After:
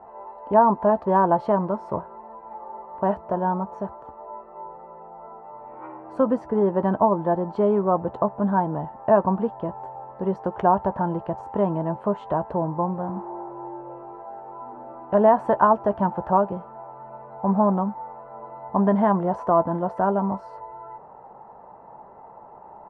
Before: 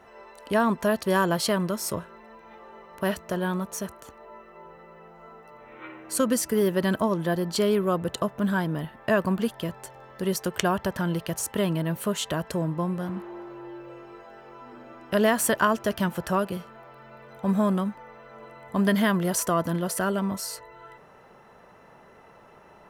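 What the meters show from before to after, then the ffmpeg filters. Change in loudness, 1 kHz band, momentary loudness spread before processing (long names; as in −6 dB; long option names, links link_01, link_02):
+3.5 dB, +8.5 dB, 20 LU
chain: -filter_complex "[0:a]lowpass=frequency=860:width_type=q:width=4.9,asplit=2[link_01][link_02];[link_02]adelay=15,volume=-13dB[link_03];[link_01][link_03]amix=inputs=2:normalize=0"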